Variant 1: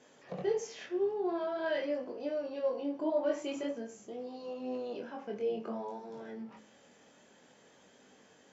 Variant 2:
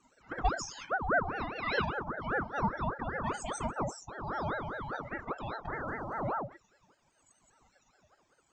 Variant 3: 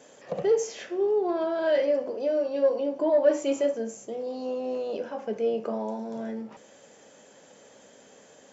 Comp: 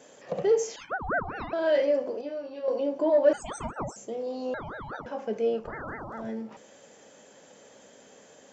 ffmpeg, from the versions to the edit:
-filter_complex "[1:a]asplit=4[a][b][c][d];[2:a]asplit=6[e][f][g][h][i][j];[e]atrim=end=0.762[k];[a]atrim=start=0.758:end=1.532[l];[f]atrim=start=1.528:end=2.212[m];[0:a]atrim=start=2.208:end=2.682[n];[g]atrim=start=2.678:end=3.332[o];[b]atrim=start=3.328:end=3.962[p];[h]atrim=start=3.958:end=4.542[q];[c]atrim=start=4.538:end=5.062[r];[i]atrim=start=5.058:end=5.76[s];[d]atrim=start=5.52:end=6.31[t];[j]atrim=start=6.07[u];[k][l]acrossfade=d=0.004:c1=hsin:c2=hsin[v];[v][m]acrossfade=d=0.004:c1=hsin:c2=hsin[w];[w][n]acrossfade=d=0.004:c1=hsin:c2=hsin[x];[x][o]acrossfade=d=0.004:c1=hsin:c2=hsin[y];[y][p]acrossfade=d=0.004:c1=hsin:c2=hsin[z];[z][q]acrossfade=d=0.004:c1=hsin:c2=hsin[aa];[aa][r]acrossfade=d=0.004:c1=hsin:c2=hsin[ab];[ab][s]acrossfade=d=0.004:c1=hsin:c2=hsin[ac];[ac][t]acrossfade=d=0.24:c1=tri:c2=tri[ad];[ad][u]acrossfade=d=0.24:c1=tri:c2=tri"

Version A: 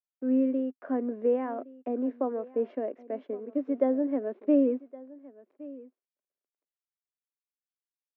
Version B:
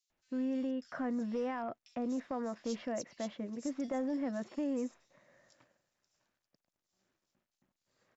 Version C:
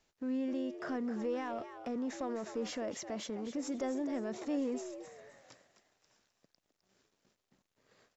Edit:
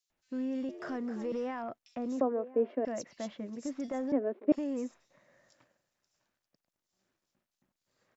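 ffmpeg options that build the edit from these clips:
-filter_complex "[0:a]asplit=2[a][b];[1:a]asplit=4[c][d][e][f];[c]atrim=end=0.692[g];[2:a]atrim=start=0.688:end=1.322[h];[d]atrim=start=1.318:end=2.212[i];[a]atrim=start=2.208:end=2.852[j];[e]atrim=start=2.848:end=4.122[k];[b]atrim=start=4.118:end=4.522[l];[f]atrim=start=4.518[m];[g][h]acrossfade=d=0.004:c1=hsin:c2=hsin[n];[n][i]acrossfade=d=0.004:c1=hsin:c2=hsin[o];[o][j]acrossfade=d=0.004:c1=hsin:c2=hsin[p];[p][k]acrossfade=d=0.004:c1=hsin:c2=hsin[q];[q][l]acrossfade=d=0.004:c1=hsin:c2=hsin[r];[r][m]acrossfade=d=0.004:c1=hsin:c2=hsin"

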